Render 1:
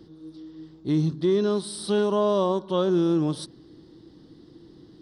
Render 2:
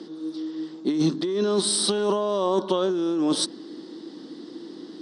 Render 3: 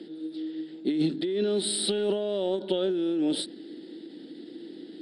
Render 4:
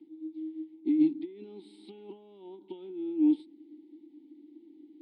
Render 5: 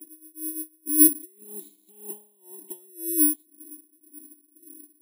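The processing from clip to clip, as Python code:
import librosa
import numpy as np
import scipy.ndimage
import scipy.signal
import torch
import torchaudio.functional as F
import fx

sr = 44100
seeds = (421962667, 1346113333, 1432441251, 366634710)

y1 = scipy.signal.sosfilt(scipy.signal.ellip(3, 1.0, 40, [230.0, 8400.0], 'bandpass', fs=sr, output='sos'), x)
y1 = fx.high_shelf(y1, sr, hz=4800.0, db=5.0)
y1 = fx.over_compress(y1, sr, threshold_db=-29.0, ratio=-1.0)
y1 = y1 * 10.0 ** (6.5 / 20.0)
y2 = fx.peak_eq(y1, sr, hz=140.0, db=-4.5, octaves=1.8)
y2 = fx.fixed_phaser(y2, sr, hz=2600.0, stages=4)
y2 = fx.end_taper(y2, sr, db_per_s=170.0)
y3 = fx.vowel_filter(y2, sr, vowel='u')
y3 = fx.upward_expand(y3, sr, threshold_db=-46.0, expansion=1.5)
y3 = y3 * 10.0 ** (4.5 / 20.0)
y4 = (np.kron(scipy.signal.resample_poly(y3, 1, 4), np.eye(4)[0]) * 4)[:len(y3)]
y4 = y4 * 10.0 ** (-19 * (0.5 - 0.5 * np.cos(2.0 * np.pi * 1.9 * np.arange(len(y4)) / sr)) / 20.0)
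y4 = y4 * 10.0 ** (2.5 / 20.0)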